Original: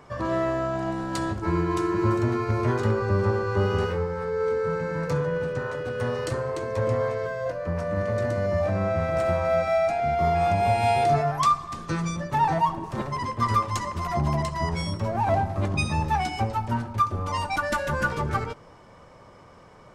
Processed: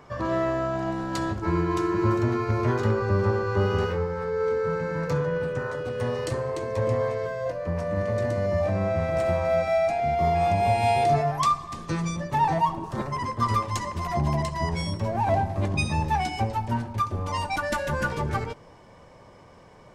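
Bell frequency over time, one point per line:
bell -8.5 dB 0.24 oct
5.34 s 8900 Hz
5.93 s 1400 Hz
12.71 s 1400 Hz
13.2 s 4500 Hz
13.58 s 1300 Hz

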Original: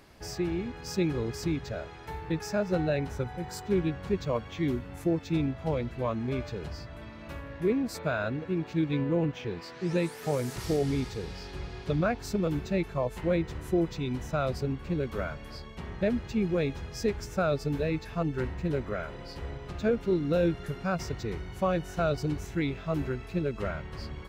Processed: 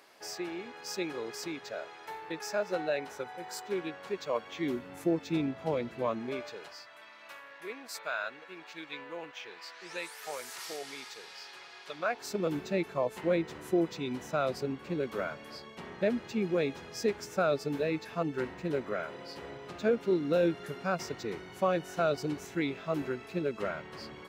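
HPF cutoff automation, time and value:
4.25 s 490 Hz
4.91 s 230 Hz
6.1 s 230 Hz
6.81 s 980 Hz
11.91 s 980 Hz
12.48 s 240 Hz

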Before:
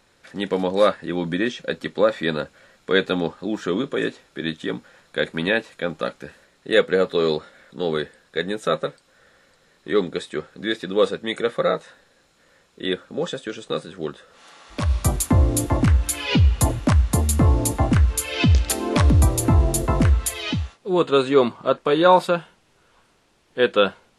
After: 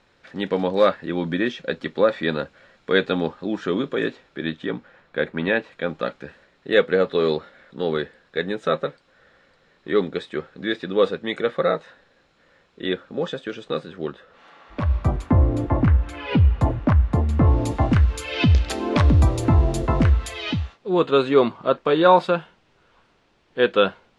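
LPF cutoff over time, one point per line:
3.96 s 4300 Hz
5.3 s 2200 Hz
5.91 s 3800 Hz
13.87 s 3800 Hz
15.03 s 1800 Hz
17.3 s 1800 Hz
17.75 s 4300 Hz

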